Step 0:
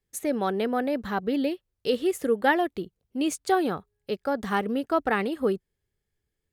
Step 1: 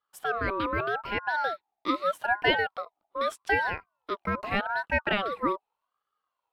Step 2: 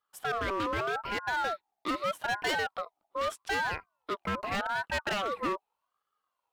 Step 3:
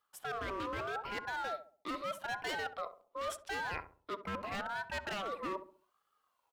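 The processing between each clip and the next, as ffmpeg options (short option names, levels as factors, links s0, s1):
-af "highshelf=f=3900:t=q:w=1.5:g=-9,aeval=exprs='val(0)*sin(2*PI*1000*n/s+1000*0.25/0.82*sin(2*PI*0.82*n/s))':c=same"
-af "asoftclip=type=hard:threshold=0.0473"
-filter_complex "[0:a]areverse,acompressor=threshold=0.00794:ratio=5,areverse,asplit=2[s0][s1];[s1]adelay=67,lowpass=f=840:p=1,volume=0.335,asplit=2[s2][s3];[s3]adelay=67,lowpass=f=840:p=1,volume=0.42,asplit=2[s4][s5];[s5]adelay=67,lowpass=f=840:p=1,volume=0.42,asplit=2[s6][s7];[s7]adelay=67,lowpass=f=840:p=1,volume=0.42,asplit=2[s8][s9];[s9]adelay=67,lowpass=f=840:p=1,volume=0.42[s10];[s0][s2][s4][s6][s8][s10]amix=inputs=6:normalize=0,volume=1.58"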